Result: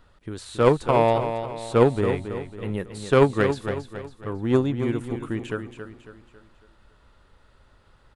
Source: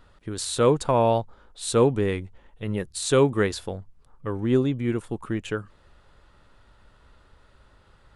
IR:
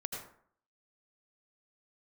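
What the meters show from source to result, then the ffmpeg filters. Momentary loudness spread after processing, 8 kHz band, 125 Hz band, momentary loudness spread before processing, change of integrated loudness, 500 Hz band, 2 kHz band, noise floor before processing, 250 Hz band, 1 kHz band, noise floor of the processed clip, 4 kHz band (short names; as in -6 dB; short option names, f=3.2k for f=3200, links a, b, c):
17 LU, -12.0 dB, +1.0 dB, 15 LU, +1.0 dB, +1.5 dB, +2.5 dB, -58 dBFS, +0.5 dB, +2.5 dB, -59 dBFS, -4.0 dB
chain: -filter_complex "[0:a]acrossover=split=2900[a][b];[b]acompressor=threshold=-41dB:ratio=4:attack=1:release=60[c];[a][c]amix=inputs=2:normalize=0,aeval=exprs='0.422*(cos(1*acos(clip(val(0)/0.422,-1,1)))-cos(1*PI/2))+0.075*(cos(3*acos(clip(val(0)/0.422,-1,1)))-cos(3*PI/2))':c=same,aecho=1:1:275|550|825|1100|1375:0.355|0.156|0.0687|0.0302|0.0133,volume=5dB"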